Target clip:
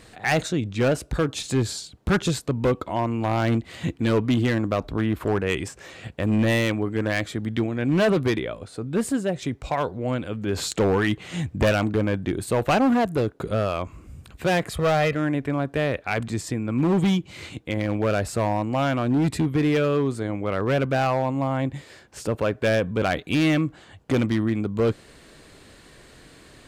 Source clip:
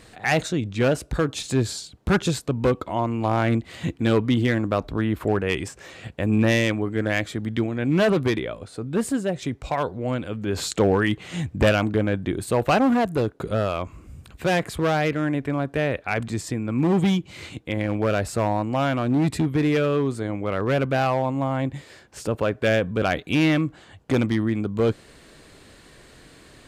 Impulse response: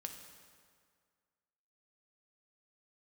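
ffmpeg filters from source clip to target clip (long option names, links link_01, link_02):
-filter_complex "[0:a]asettb=1/sr,asplit=3[link_01][link_02][link_03];[link_01]atrim=end=14.714[link_04];[link_02]atrim=start=14.71:end=15.15,asetpts=PTS-STARTPTS,afade=type=in:duration=0.004:curve=qsin,afade=type=out:start_time=0.436:duration=0.004:curve=qsin,aecho=1:1:1.6:0.62,atrim=end_sample=19404[link_05];[link_03]atrim=start=15.146[link_06];[link_04][link_05]acrossfade=duration=0.004:curve1=hsin:curve2=qsin[link_07];[link_07][link_06]acrossfade=duration=0.004:curve1=qsin:curve2=hsin,asoftclip=type=hard:threshold=-15dB"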